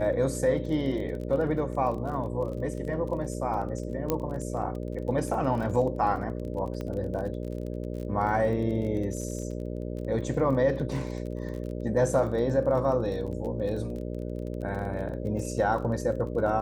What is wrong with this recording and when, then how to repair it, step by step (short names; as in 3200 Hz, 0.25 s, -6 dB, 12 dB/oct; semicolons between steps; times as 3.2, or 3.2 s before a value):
buzz 60 Hz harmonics 10 -34 dBFS
crackle 29/s -36 dBFS
4.1 pop -12 dBFS
6.81 pop -23 dBFS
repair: de-click; de-hum 60 Hz, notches 10